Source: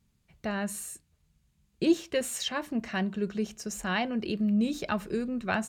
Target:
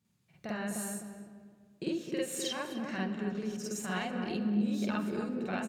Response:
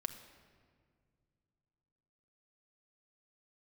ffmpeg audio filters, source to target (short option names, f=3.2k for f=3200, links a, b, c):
-filter_complex "[0:a]highpass=f=94:w=0.5412,highpass=f=94:w=1.3066,acompressor=threshold=-31dB:ratio=5,asplit=2[a][b];[b]adelay=256,lowpass=f=1.1k:p=1,volume=-4dB,asplit=2[c][d];[d]adelay=256,lowpass=f=1.1k:p=1,volume=0.39,asplit=2[e][f];[f]adelay=256,lowpass=f=1.1k:p=1,volume=0.39,asplit=2[g][h];[h]adelay=256,lowpass=f=1.1k:p=1,volume=0.39,asplit=2[i][j];[j]adelay=256,lowpass=f=1.1k:p=1,volume=0.39[k];[a][c][e][g][i][k]amix=inputs=6:normalize=0,asplit=2[l][m];[1:a]atrim=start_sample=2205,adelay=48[n];[m][n]afir=irnorm=-1:irlink=0,volume=4.5dB[o];[l][o]amix=inputs=2:normalize=0,volume=-6.5dB"